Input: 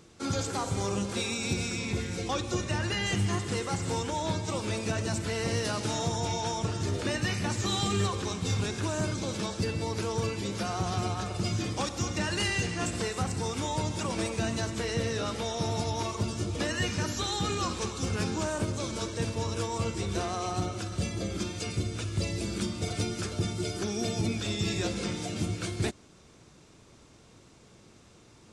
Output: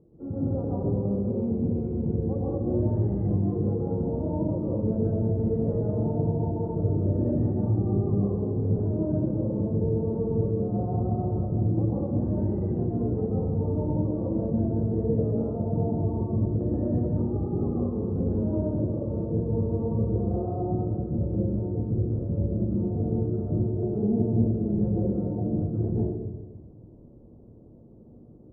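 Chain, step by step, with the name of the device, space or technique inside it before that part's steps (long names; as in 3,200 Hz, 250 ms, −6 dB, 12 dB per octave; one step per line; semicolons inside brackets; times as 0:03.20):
next room (low-pass filter 570 Hz 24 dB per octave; convolution reverb RT60 1.2 s, pre-delay 111 ms, DRR −6.5 dB)
level −2 dB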